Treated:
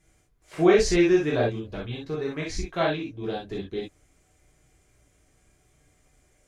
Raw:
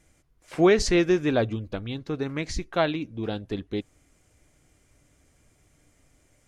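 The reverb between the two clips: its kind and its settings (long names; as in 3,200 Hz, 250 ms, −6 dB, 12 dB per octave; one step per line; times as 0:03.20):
reverb whose tail is shaped and stops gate 90 ms flat, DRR −4.5 dB
level −6 dB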